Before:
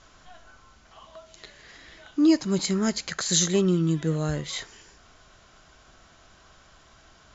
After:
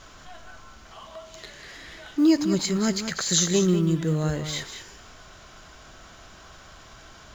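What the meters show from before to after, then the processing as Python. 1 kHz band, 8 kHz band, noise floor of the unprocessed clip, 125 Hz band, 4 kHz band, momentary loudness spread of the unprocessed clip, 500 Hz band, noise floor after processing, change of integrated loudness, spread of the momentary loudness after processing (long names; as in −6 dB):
+1.5 dB, can't be measured, −56 dBFS, +1.5 dB, +1.5 dB, 11 LU, +1.0 dB, −48 dBFS, +1.0 dB, 21 LU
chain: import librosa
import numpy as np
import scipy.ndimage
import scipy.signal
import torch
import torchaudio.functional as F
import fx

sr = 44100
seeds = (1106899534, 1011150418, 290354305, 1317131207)

y = fx.law_mismatch(x, sr, coded='mu')
y = y + 10.0 ** (-9.5 / 20.0) * np.pad(y, (int(194 * sr / 1000.0), 0))[:len(y)]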